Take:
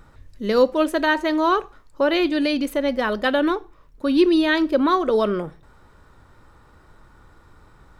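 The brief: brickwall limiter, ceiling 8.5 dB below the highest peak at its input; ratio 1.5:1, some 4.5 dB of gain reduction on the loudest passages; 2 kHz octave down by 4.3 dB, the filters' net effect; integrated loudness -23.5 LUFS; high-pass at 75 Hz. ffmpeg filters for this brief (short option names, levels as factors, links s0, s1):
-af "highpass=75,equalizer=f=2000:t=o:g=-5.5,acompressor=threshold=0.0631:ratio=1.5,volume=1.58,alimiter=limit=0.168:level=0:latency=1"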